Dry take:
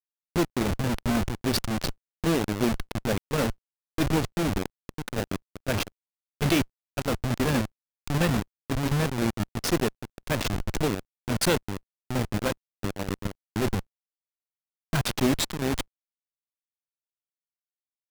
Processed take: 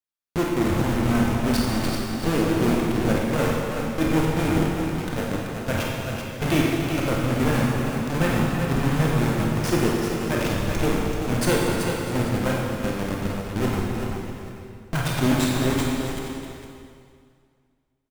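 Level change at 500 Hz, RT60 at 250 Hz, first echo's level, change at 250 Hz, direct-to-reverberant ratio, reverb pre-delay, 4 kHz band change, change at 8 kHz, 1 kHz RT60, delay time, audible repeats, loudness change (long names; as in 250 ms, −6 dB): +5.0 dB, 2.3 s, −7.0 dB, +5.5 dB, −4.0 dB, 23 ms, +1.0 dB, +1.5 dB, 2.3 s, 51 ms, 5, +4.5 dB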